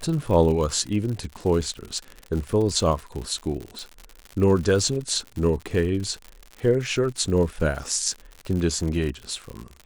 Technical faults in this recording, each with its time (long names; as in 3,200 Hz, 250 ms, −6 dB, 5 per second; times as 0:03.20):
surface crackle 100 per second −30 dBFS
0:03.79: click